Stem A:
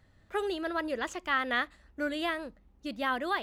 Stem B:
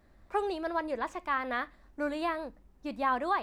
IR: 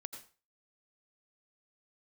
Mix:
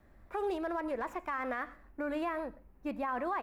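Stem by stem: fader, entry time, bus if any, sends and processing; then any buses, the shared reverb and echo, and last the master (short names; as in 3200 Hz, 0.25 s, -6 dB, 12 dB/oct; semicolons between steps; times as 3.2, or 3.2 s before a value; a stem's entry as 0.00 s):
-15.5 dB, 0.00 s, send -14.5 dB, minimum comb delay 0.55 ms; high shelf 4000 Hz +11 dB; auto duck -18 dB, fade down 1.85 s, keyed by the second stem
-1.0 dB, 2.8 ms, send -9.5 dB, band shelf 5400 Hz -12.5 dB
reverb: on, RT60 0.35 s, pre-delay 78 ms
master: limiter -26.5 dBFS, peak gain reduction 10 dB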